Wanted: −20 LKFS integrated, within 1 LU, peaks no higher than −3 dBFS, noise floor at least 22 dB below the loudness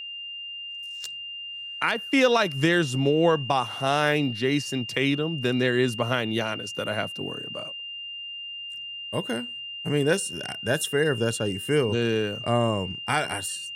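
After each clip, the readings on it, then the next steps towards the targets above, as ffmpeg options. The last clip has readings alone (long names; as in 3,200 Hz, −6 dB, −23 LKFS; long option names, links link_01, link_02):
interfering tone 2,800 Hz; level of the tone −34 dBFS; integrated loudness −26.0 LKFS; sample peak −9.0 dBFS; target loudness −20.0 LKFS
→ -af "bandreject=frequency=2800:width=30"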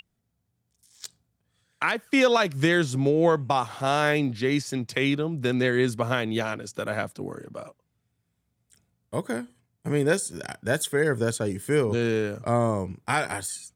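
interfering tone none found; integrated loudness −25.5 LKFS; sample peak −9.0 dBFS; target loudness −20.0 LKFS
→ -af "volume=5.5dB"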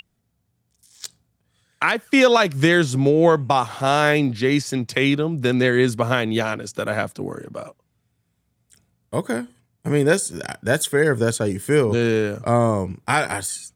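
integrated loudness −20.0 LKFS; sample peak −3.5 dBFS; background noise floor −71 dBFS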